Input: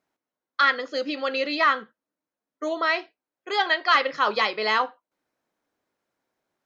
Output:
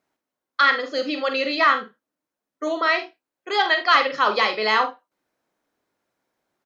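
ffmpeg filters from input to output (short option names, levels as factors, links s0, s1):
-af "aecho=1:1:46|76:0.376|0.168,volume=1.33"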